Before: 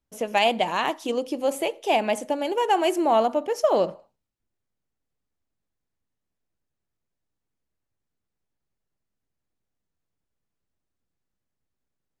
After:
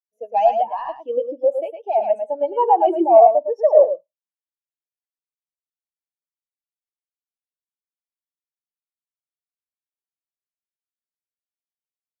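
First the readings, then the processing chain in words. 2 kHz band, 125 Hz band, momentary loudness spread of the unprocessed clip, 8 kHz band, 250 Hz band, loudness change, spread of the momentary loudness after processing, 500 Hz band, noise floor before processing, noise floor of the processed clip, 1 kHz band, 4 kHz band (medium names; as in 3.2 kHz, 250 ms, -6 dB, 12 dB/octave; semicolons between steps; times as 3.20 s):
under -15 dB, under -15 dB, 6 LU, under -25 dB, -1.0 dB, +6.5 dB, 13 LU, +7.5 dB, -83 dBFS, under -85 dBFS, +6.5 dB, under -15 dB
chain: high-pass 560 Hz 6 dB/octave; sine folder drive 8 dB, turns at -8.5 dBFS; delay 109 ms -3 dB; spectral contrast expander 2.5:1; trim +2.5 dB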